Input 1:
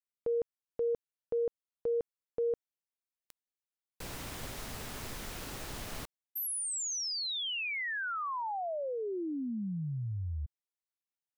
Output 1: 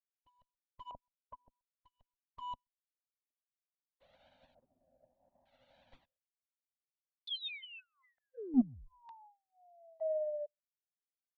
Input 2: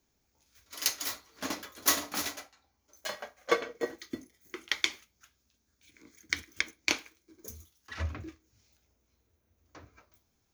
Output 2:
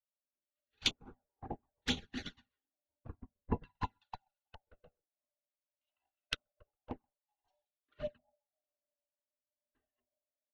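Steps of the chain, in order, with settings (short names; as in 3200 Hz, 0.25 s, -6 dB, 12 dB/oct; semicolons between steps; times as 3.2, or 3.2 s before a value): band-swap scrambler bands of 500 Hz; low-pass opened by the level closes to 2800 Hz, open at -30 dBFS; bell 250 Hz +11.5 dB 0.26 oct; in parallel at -4 dB: Schmitt trigger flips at -29.5 dBFS; on the sum: notch 5000 Hz, Q 5.9; echo 0.129 s -21.5 dB; rotary speaker horn 0.65 Hz; high shelf 3700 Hz -7.5 dB; LFO low-pass square 0.55 Hz 650–3800 Hz; envelope flanger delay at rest 3.3 ms, full sweep at -30.5 dBFS; upward expander 2.5:1, over -52 dBFS; gain +5 dB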